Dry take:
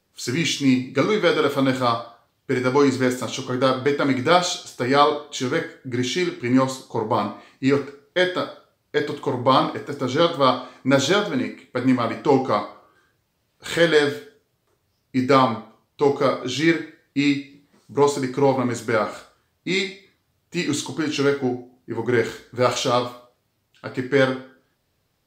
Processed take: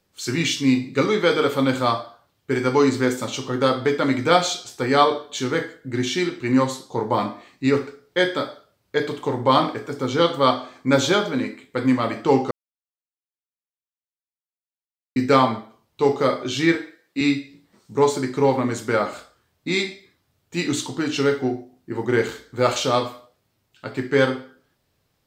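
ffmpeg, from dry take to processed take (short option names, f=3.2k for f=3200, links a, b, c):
-filter_complex "[0:a]asettb=1/sr,asplit=3[a][b][c];[a]atrim=end=16.754[d];[b]atrim=start=16.75:end=17.21,asetpts=PTS-STARTPTS,afade=t=in:d=0.004:c=qsin,afade=t=out:st=0.456:d=0.004:c=qsin,highpass=270[e];[c]atrim=start=17.206[f];[d][e]acrossfade=d=0.004:c1=hsin:c2=qsin[g];[g][f]acrossfade=d=0.004:c1=qsin:c2=hsin,asplit=3[h][i][j];[h]atrim=end=12.51,asetpts=PTS-STARTPTS,afade=t=out:st=12.506:d=0.004:c=hsin[k];[i]atrim=start=12.51:end=15.16,asetpts=PTS-STARTPTS,volume=0[l];[j]atrim=start=15.16,asetpts=PTS-STARTPTS,afade=t=in:d=0.004:c=hsin[m];[k][l][m]concat=n=3:v=0:a=1"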